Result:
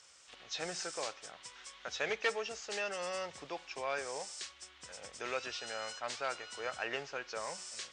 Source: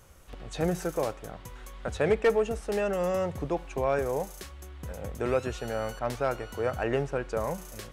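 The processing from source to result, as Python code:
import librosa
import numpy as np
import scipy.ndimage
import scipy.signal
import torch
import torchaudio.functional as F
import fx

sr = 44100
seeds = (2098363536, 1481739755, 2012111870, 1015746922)

y = fx.freq_compress(x, sr, knee_hz=3700.0, ratio=1.5)
y = fx.bandpass_q(y, sr, hz=5100.0, q=0.75)
y = F.gain(torch.from_numpy(y), 5.0).numpy()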